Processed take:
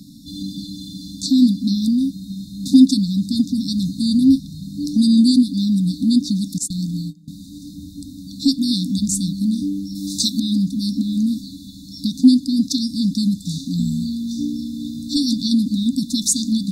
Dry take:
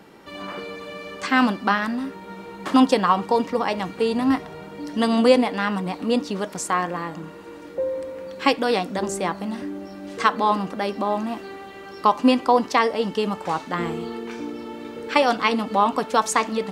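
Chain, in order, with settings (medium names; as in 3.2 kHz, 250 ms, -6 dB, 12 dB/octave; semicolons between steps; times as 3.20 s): 6.58–7.28 s: gate -28 dBFS, range -23 dB; 9.95–10.40 s: treble shelf 3.2 kHz +11 dB; FFT band-reject 300–3500 Hz; in parallel at +2 dB: compression, threshold -29 dBFS, peak gain reduction 16 dB; on the sum: trim +5 dB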